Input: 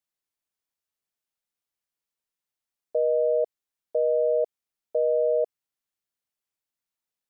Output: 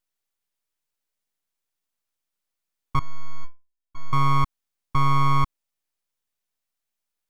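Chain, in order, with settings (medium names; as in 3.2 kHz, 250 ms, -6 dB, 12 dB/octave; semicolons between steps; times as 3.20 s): full-wave rectifier; 2.99–4.13 s: inharmonic resonator 330 Hz, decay 0.27 s, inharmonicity 0.008; trim +6 dB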